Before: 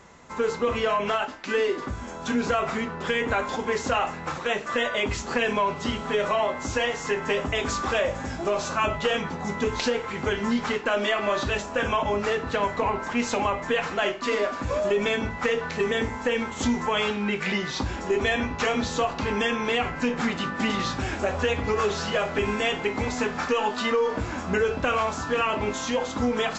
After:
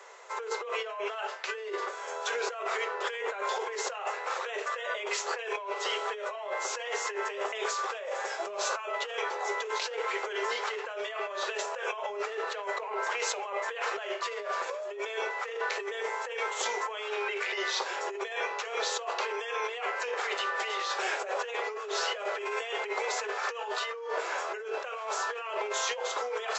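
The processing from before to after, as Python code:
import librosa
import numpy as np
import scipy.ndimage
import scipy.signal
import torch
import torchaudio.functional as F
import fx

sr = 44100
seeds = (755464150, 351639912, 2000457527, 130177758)

y = scipy.signal.sosfilt(scipy.signal.cheby1(6, 1.0, 400.0, 'highpass', fs=sr, output='sos'), x)
y = fx.over_compress(y, sr, threshold_db=-32.0, ratio=-1.0)
y = y * 10.0 ** (-2.0 / 20.0)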